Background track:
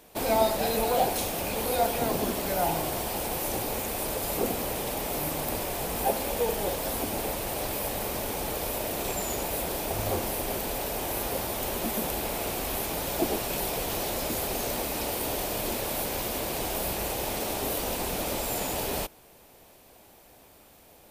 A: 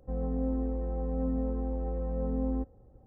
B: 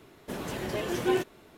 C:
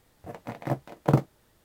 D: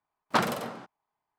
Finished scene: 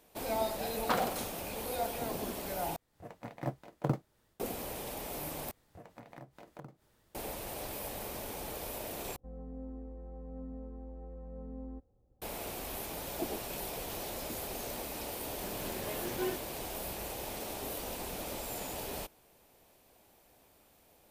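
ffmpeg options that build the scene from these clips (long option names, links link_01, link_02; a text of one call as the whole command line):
ffmpeg -i bed.wav -i cue0.wav -i cue1.wav -i cue2.wav -i cue3.wav -filter_complex "[3:a]asplit=2[link_01][link_02];[0:a]volume=-9.5dB[link_03];[link_01]dynaudnorm=framelen=110:gausssize=3:maxgain=7dB[link_04];[link_02]acompressor=threshold=-42dB:ratio=6:attack=6.5:release=165:knee=1:detection=peak[link_05];[link_03]asplit=4[link_06][link_07][link_08][link_09];[link_06]atrim=end=2.764[link_10];[link_04]atrim=end=1.64,asetpts=PTS-STARTPTS,volume=-14.5dB[link_11];[link_07]atrim=start=4.396:end=5.514[link_12];[link_05]atrim=end=1.64,asetpts=PTS-STARTPTS,volume=-6dB[link_13];[link_08]atrim=start=7.146:end=9.164[link_14];[1:a]atrim=end=3.06,asetpts=PTS-STARTPTS,volume=-13.5dB[link_15];[link_09]atrim=start=12.216[link_16];[4:a]atrim=end=1.38,asetpts=PTS-STARTPTS,volume=-7.5dB,afade=type=in:duration=0.004:curve=hsin,afade=type=out:start_time=1.376:duration=0.004:curve=hsin,adelay=550[link_17];[2:a]atrim=end=1.57,asetpts=PTS-STARTPTS,volume=-9.5dB,afade=type=in:duration=0.004:curve=hsin,afade=type=out:start_time=1.566:duration=0.004:curve=hsin,adelay=15130[link_18];[link_10][link_11]acrossfade=duration=0.004:curve1=hsin:curve2=hsin[link_19];[link_19][link_12]acrossfade=duration=0.004:curve1=hsin:curve2=hsin[link_20];[link_20][link_13]acrossfade=duration=0.004:curve1=hsin:curve2=hsin[link_21];[link_21][link_14]acrossfade=duration=0.004:curve1=hsin:curve2=hsin[link_22];[link_22][link_15]acrossfade=duration=0.004:curve1=hsin:curve2=hsin[link_23];[link_23][link_16]acrossfade=duration=0.004:curve1=hsin:curve2=hsin[link_24];[link_24][link_17][link_18]amix=inputs=3:normalize=0" out.wav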